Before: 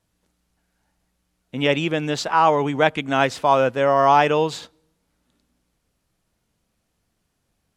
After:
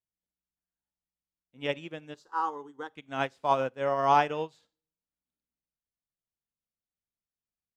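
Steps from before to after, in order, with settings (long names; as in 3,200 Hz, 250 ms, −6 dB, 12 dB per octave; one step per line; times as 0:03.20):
0:02.14–0:02.91: phaser with its sweep stopped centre 640 Hz, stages 6
four-comb reverb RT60 0.38 s, combs from 30 ms, DRR 15 dB
expander for the loud parts 2.5 to 1, over −29 dBFS
level −6 dB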